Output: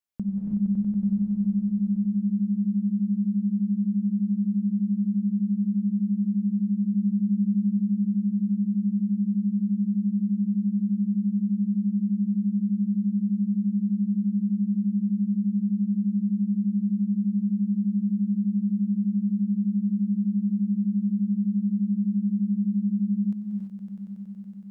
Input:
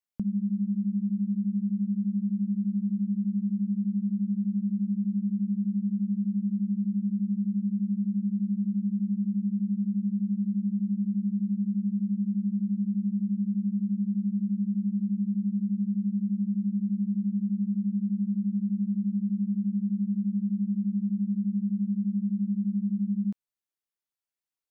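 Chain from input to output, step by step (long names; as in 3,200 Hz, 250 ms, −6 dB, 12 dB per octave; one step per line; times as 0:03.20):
0:06.91–0:07.77: double-tracking delay 15 ms −13.5 dB
echo that builds up and dies away 93 ms, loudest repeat 5, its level −9 dB
reverb whose tail is shaped and stops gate 360 ms rising, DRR 0 dB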